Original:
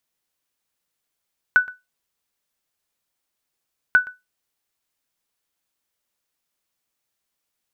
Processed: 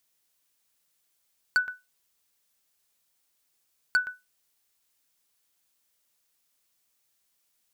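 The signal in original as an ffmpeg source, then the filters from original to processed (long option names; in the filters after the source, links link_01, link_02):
-f lavfi -i "aevalsrc='0.501*(sin(2*PI*1490*mod(t,2.39))*exp(-6.91*mod(t,2.39)/0.2)+0.0841*sin(2*PI*1490*max(mod(t,2.39)-0.12,0))*exp(-6.91*max(mod(t,2.39)-0.12,0)/0.2))':duration=4.78:sample_rate=44100"
-af "highshelf=frequency=3200:gain=7.5,acompressor=threshold=-18dB:ratio=10,asoftclip=type=hard:threshold=-18dB"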